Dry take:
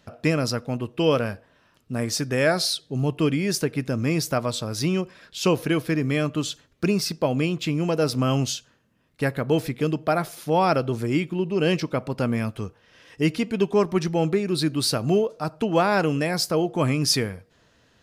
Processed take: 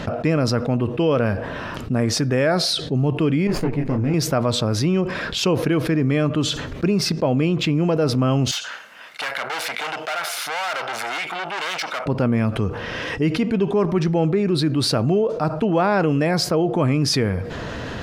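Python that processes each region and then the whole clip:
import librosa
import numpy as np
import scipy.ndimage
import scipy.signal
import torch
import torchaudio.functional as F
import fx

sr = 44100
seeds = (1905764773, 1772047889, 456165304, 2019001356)

y = fx.chain(x, sr, fx.lower_of_two(delay_ms=0.43),
    fx.high_shelf(hz=2200.0, db=-8.5),
    fx.detune_double(cents=33), at=(3.47, 4.14))
y = fx.chain(y, sr, fx.tube_stage(drive_db=35.0, bias=0.6),
    fx.highpass(hz=1300.0, slope=12),
    fx.comb(ms=1.4, depth=0.3), at=(8.51, 12.06))
y = fx.lowpass(y, sr, hz=1700.0, slope=6)
y = fx.env_flatten(y, sr, amount_pct=70)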